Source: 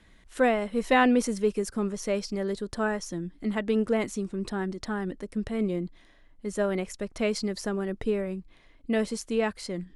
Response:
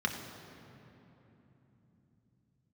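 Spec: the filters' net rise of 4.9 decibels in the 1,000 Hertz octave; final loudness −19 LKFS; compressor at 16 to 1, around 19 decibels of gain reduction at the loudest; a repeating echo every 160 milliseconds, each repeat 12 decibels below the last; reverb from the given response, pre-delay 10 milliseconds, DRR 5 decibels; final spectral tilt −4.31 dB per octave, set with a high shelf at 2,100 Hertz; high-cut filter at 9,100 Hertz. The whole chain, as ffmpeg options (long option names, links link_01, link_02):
-filter_complex "[0:a]lowpass=9100,equalizer=frequency=1000:width_type=o:gain=5.5,highshelf=frequency=2100:gain=6.5,acompressor=threshold=-32dB:ratio=16,aecho=1:1:160|320|480:0.251|0.0628|0.0157,asplit=2[link_01][link_02];[1:a]atrim=start_sample=2205,adelay=10[link_03];[link_02][link_03]afir=irnorm=-1:irlink=0,volume=-12dB[link_04];[link_01][link_04]amix=inputs=2:normalize=0,volume=16.5dB"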